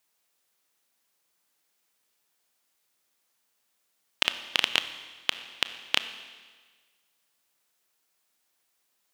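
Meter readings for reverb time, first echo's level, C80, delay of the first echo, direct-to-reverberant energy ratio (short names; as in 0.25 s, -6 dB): 1.5 s, none, 13.0 dB, none, 10.5 dB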